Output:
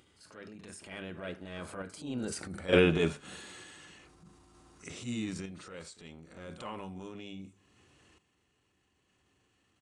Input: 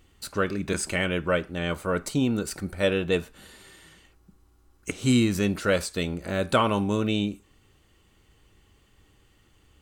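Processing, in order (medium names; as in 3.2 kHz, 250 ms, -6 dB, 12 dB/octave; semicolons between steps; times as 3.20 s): Doppler pass-by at 2.45 s, 21 m/s, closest 4.2 m; high-pass 100 Hz 12 dB/octave; hum notches 50/100/150/200 Hz; transient shaper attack -10 dB, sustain +6 dB; in parallel at +2.5 dB: upward compressor, threshold -40 dBFS; on the sum: random-step tremolo 1.1 Hz, depth 80%; on a send: reverse echo 42 ms -10.5 dB; on the sum: resampled via 22.05 kHz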